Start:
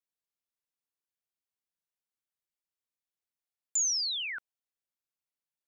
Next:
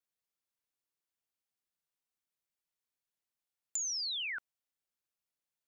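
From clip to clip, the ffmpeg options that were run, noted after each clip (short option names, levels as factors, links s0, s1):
-af "acompressor=threshold=0.0178:ratio=6"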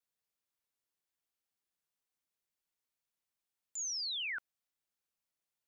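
-af "alimiter=level_in=3.55:limit=0.0631:level=0:latency=1,volume=0.282"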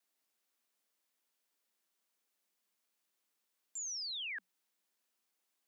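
-af "alimiter=level_in=11.2:limit=0.0631:level=0:latency=1,volume=0.0891,afreqshift=180,volume=2.24"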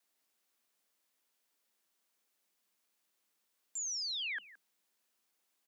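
-af "aecho=1:1:170:0.119,volume=1.41"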